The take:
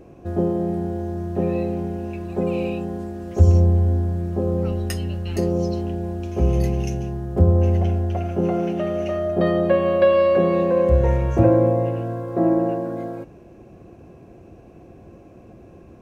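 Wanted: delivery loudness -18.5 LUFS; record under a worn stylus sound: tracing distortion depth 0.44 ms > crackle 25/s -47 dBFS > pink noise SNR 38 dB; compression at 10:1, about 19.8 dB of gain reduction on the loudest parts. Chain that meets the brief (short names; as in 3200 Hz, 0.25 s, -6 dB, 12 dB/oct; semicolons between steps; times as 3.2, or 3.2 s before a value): compressor 10:1, threshold -30 dBFS; tracing distortion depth 0.44 ms; crackle 25/s -47 dBFS; pink noise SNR 38 dB; gain +15.5 dB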